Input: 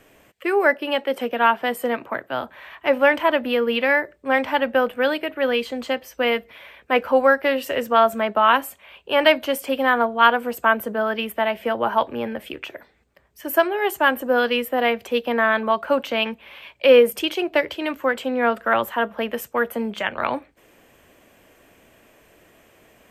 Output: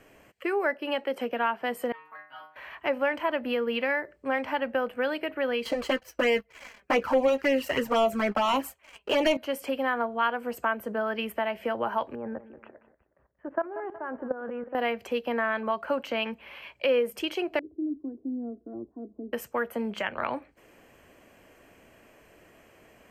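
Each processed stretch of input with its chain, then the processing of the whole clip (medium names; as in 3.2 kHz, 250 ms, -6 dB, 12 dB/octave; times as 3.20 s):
1.92–2.56 s: resonant low shelf 730 Hz -10 dB, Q 1.5 + inharmonic resonator 150 Hz, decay 0.51 s, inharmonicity 0.002
5.65–9.37 s: waveshaping leveller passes 3 + touch-sensitive flanger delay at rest 5.9 ms, full sweep at -6 dBFS + doubling 15 ms -14 dB
12.15–14.75 s: low-pass 1.5 kHz 24 dB/octave + level held to a coarse grid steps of 16 dB + feedback delay 183 ms, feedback 38%, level -16 dB
17.59–19.33 s: four-pole ladder low-pass 340 Hz, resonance 60% + comb 2.8 ms, depth 56%
whole clip: treble shelf 6.9 kHz -6.5 dB; band-stop 3.6 kHz, Q 6; compression 2:1, threshold -27 dBFS; trim -2 dB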